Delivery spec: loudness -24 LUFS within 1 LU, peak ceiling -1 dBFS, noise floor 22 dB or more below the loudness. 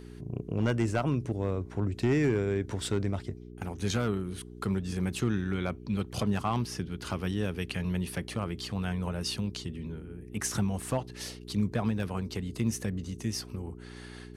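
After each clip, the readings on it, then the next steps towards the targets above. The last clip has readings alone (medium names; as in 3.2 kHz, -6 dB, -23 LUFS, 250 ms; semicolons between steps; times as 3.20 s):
clipped samples 0.4%; clipping level -19.5 dBFS; hum 60 Hz; highest harmonic 420 Hz; hum level -44 dBFS; loudness -32.5 LUFS; peak level -19.5 dBFS; loudness target -24.0 LUFS
-> clip repair -19.5 dBFS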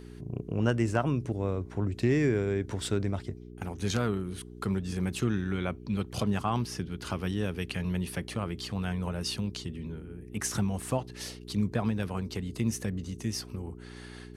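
clipped samples 0.0%; hum 60 Hz; highest harmonic 420 Hz; hum level -44 dBFS
-> de-hum 60 Hz, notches 7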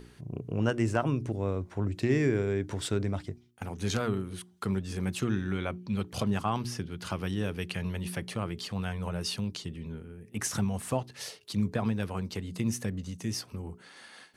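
hum not found; loudness -32.5 LUFS; peak level -12.0 dBFS; loudness target -24.0 LUFS
-> trim +8.5 dB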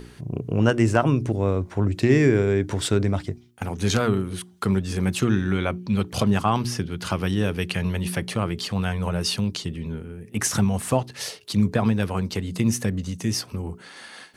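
loudness -24.0 LUFS; peak level -3.5 dBFS; noise floor -48 dBFS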